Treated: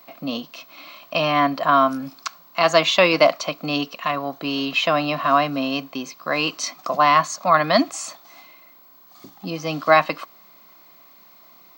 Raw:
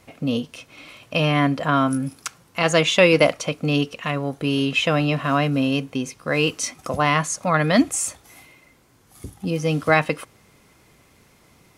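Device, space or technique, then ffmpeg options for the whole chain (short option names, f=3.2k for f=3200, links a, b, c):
old television with a line whistle: -af "highpass=f=190:w=0.5412,highpass=f=190:w=1.3066,equalizer=f=240:t=q:w=4:g=-4,equalizer=f=460:t=q:w=4:g=-9,equalizer=f=670:t=q:w=4:g=8,equalizer=f=1.1k:t=q:w=4:g=10,equalizer=f=4.3k:t=q:w=4:g=9,lowpass=f=6.6k:w=0.5412,lowpass=f=6.6k:w=1.3066,aeval=exprs='val(0)+0.00447*sin(2*PI*15734*n/s)':c=same,volume=-1dB"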